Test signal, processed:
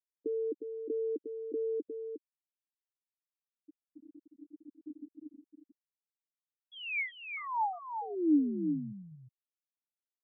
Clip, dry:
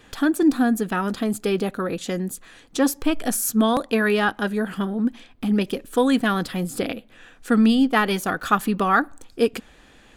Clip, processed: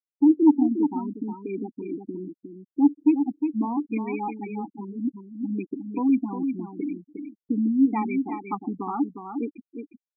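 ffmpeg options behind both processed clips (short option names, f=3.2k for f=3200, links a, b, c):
-filter_complex "[0:a]asplit=3[a][b][c];[a]bandpass=f=300:t=q:w=8,volume=0dB[d];[b]bandpass=f=870:t=q:w=8,volume=-6dB[e];[c]bandpass=f=2.24k:t=q:w=8,volume=-9dB[f];[d][e][f]amix=inputs=3:normalize=0,acontrast=36,asoftclip=type=hard:threshold=-10dB,afftfilt=real='re*gte(hypot(re,im),0.0794)':imag='im*gte(hypot(re,im),0.0794)':win_size=1024:overlap=0.75,asplit=2[g][h];[h]aecho=0:1:358:0.447[i];[g][i]amix=inputs=2:normalize=0"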